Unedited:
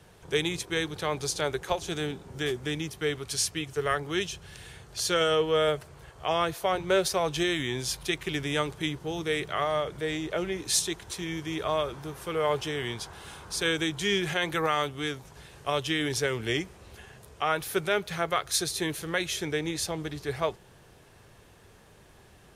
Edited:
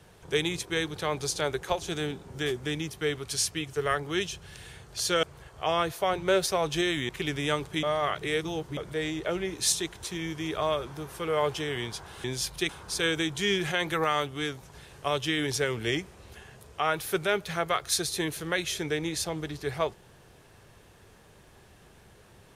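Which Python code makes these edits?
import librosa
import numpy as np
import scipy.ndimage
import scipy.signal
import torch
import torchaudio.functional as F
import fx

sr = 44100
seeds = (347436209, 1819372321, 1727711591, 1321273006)

y = fx.edit(x, sr, fx.cut(start_s=5.23, length_s=0.62),
    fx.move(start_s=7.71, length_s=0.45, to_s=13.31),
    fx.reverse_span(start_s=8.9, length_s=0.94), tone=tone)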